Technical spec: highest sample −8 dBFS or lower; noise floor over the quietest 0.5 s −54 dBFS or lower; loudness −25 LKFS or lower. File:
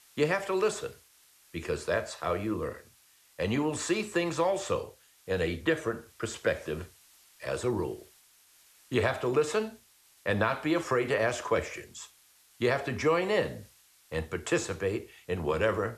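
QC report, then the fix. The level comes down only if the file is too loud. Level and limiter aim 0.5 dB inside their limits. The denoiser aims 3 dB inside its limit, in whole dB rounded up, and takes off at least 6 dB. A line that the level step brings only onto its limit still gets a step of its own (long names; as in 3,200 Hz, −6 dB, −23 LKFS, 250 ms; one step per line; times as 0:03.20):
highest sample −14.0 dBFS: in spec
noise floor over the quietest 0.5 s −62 dBFS: in spec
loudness −30.5 LKFS: in spec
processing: no processing needed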